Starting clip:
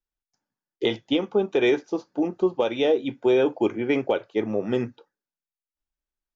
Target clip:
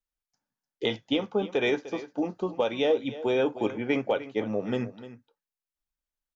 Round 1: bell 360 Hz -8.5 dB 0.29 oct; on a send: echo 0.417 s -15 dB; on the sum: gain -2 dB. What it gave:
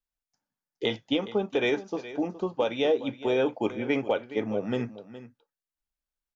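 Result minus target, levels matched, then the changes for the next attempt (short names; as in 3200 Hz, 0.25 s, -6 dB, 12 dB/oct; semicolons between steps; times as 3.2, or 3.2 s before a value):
echo 0.116 s late
change: echo 0.301 s -15 dB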